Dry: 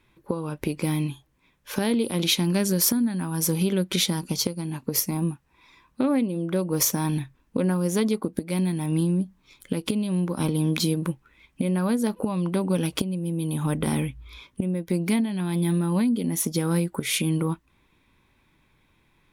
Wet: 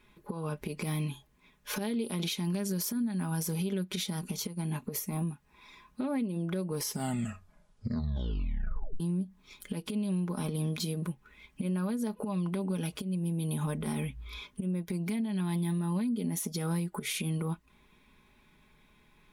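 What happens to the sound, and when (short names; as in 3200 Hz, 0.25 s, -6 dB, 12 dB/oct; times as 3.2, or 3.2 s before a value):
4.19–5.31 bell 4900 Hz -7.5 dB 0.4 oct
6.68 tape stop 2.32 s
whole clip: comb 4.8 ms, depth 54%; compressor, threshold -29 dBFS; limiter -24 dBFS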